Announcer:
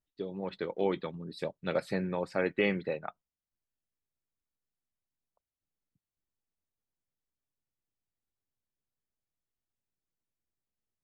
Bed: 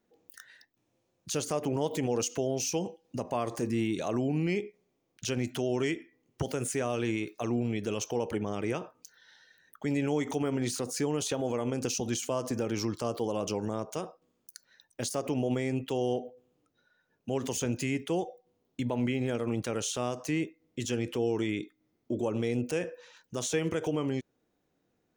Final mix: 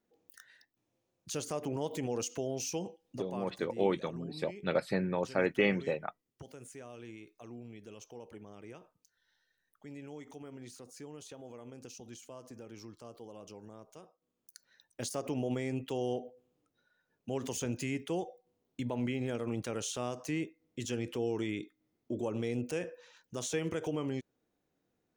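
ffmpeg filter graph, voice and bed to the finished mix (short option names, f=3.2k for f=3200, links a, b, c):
-filter_complex "[0:a]adelay=3000,volume=0.5dB[a];[1:a]volume=7.5dB,afade=t=out:st=2.93:d=0.68:silence=0.251189,afade=t=in:st=14.16:d=0.49:silence=0.223872[b];[a][b]amix=inputs=2:normalize=0"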